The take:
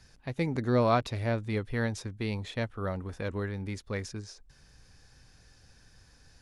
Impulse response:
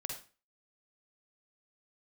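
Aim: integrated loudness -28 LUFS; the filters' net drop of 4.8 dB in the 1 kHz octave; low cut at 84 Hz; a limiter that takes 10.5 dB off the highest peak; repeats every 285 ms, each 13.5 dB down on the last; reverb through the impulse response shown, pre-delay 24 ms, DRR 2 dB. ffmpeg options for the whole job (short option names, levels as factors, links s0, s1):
-filter_complex "[0:a]highpass=84,equalizer=f=1000:t=o:g=-7,alimiter=level_in=1.12:limit=0.0631:level=0:latency=1,volume=0.891,aecho=1:1:285|570:0.211|0.0444,asplit=2[s0][s1];[1:a]atrim=start_sample=2205,adelay=24[s2];[s1][s2]afir=irnorm=-1:irlink=0,volume=0.841[s3];[s0][s3]amix=inputs=2:normalize=0,volume=2.24"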